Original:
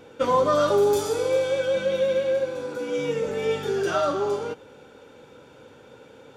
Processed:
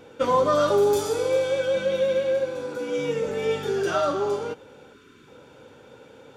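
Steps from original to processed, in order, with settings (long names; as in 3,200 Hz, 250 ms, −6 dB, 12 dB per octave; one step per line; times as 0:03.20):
gain on a spectral selection 0:04.94–0:05.28, 450–970 Hz −19 dB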